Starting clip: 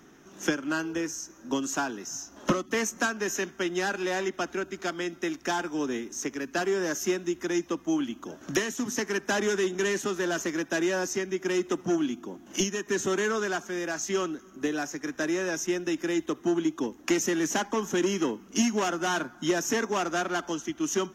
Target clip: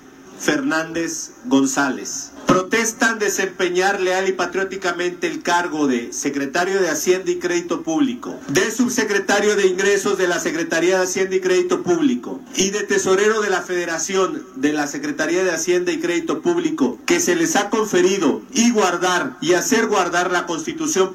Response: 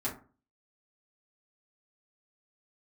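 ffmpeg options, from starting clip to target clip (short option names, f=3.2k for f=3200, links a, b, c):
-filter_complex "[0:a]asplit=2[a][b];[1:a]atrim=start_sample=2205,atrim=end_sample=3528,lowshelf=f=140:g=-10[c];[b][c]afir=irnorm=-1:irlink=0,volume=-5.5dB[d];[a][d]amix=inputs=2:normalize=0,volume=7dB"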